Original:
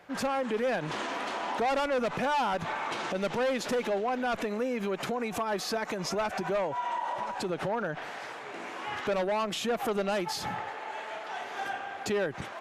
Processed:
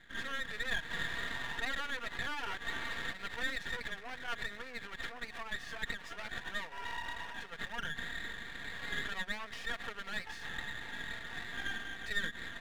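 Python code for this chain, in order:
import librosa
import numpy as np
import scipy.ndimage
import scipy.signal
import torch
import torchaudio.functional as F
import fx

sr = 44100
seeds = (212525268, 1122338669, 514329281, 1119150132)

y = fx.bandpass_q(x, sr, hz=1800.0, q=9.8)
y = y + 0.9 * np.pad(y, (int(4.3 * sr / 1000.0), 0))[:len(y)]
y = np.maximum(y, 0.0)
y = y * 10.0 ** (10.0 / 20.0)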